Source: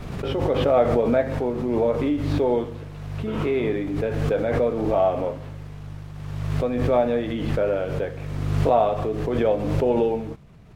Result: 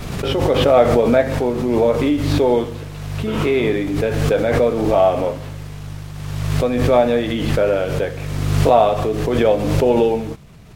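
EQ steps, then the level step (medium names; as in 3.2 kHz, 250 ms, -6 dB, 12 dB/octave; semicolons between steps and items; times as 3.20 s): treble shelf 3.2 kHz +10.5 dB; +5.5 dB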